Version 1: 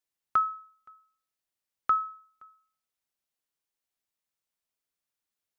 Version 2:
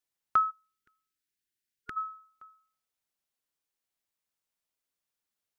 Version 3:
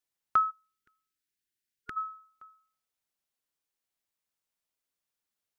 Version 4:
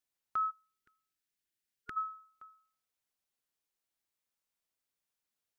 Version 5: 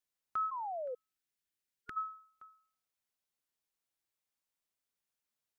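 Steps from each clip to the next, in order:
time-frequency box 0.51–1.97 s, 450–1400 Hz -21 dB
no audible change
peak limiter -26 dBFS, peak gain reduction 10 dB; trim -1.5 dB
painted sound fall, 0.51–0.95 s, 480–1100 Hz -37 dBFS; trim -2 dB

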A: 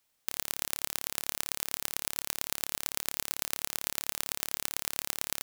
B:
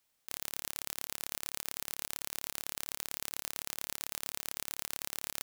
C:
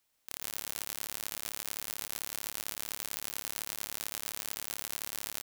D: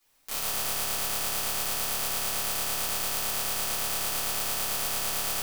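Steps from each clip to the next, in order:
compressor with a negative ratio -38 dBFS, ratio -1; trim -3.5 dB
delay 130 ms -5 dB
simulated room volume 130 m³, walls mixed, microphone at 3.2 m

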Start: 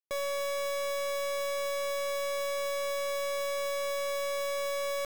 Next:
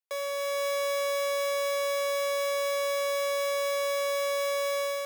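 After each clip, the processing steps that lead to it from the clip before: steep high-pass 410 Hz 48 dB/octave; band-stop 7.8 kHz, Q 26; level rider gain up to 4 dB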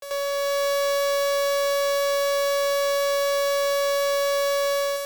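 square wave that keeps the level; on a send: reverse echo 87 ms -7 dB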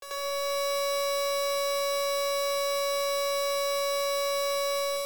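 in parallel at -4 dB: hard clipper -28 dBFS, distortion -10 dB; on the sum: simulated room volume 3200 m³, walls furnished, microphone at 3.7 m; trim -8.5 dB

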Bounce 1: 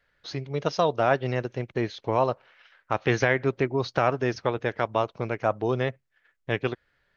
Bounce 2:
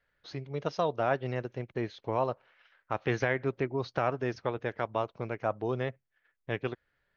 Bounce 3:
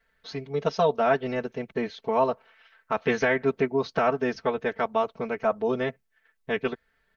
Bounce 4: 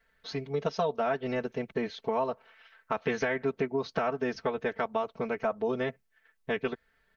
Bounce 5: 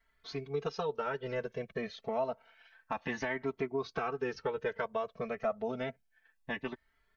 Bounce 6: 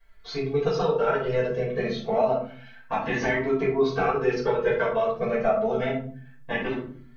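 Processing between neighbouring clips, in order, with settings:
treble shelf 4.9 kHz -8 dB; trim -6 dB
comb 4.5 ms, depth 98%; trim +3.5 dB
compression 3:1, threshold -27 dBFS, peak gain reduction 8.5 dB
Shepard-style flanger rising 0.29 Hz
reverberation RT60 0.50 s, pre-delay 4 ms, DRR -7.5 dB

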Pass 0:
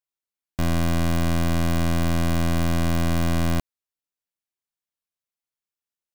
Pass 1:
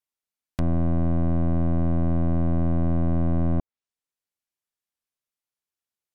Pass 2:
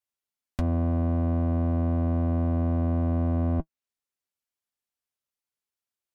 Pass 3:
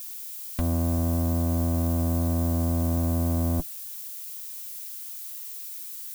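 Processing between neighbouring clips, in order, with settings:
low-pass that closes with the level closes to 660 Hz, closed at -22 dBFS
comb of notches 160 Hz
added noise violet -38 dBFS

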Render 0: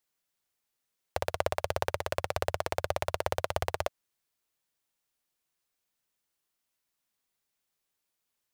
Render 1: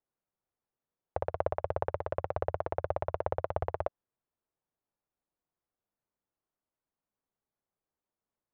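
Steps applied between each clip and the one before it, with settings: low-pass 1 kHz 12 dB/octave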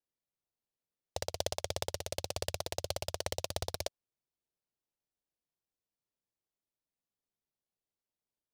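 delay time shaken by noise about 4.3 kHz, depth 0.18 ms; trim -4.5 dB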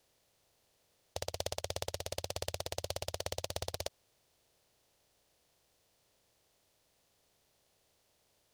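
spectral levelling over time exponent 0.6; trim -4.5 dB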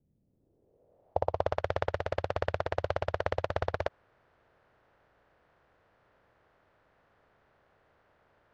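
low-pass sweep 190 Hz -> 1.5 kHz, 0.13–1.59 s; trim +8 dB

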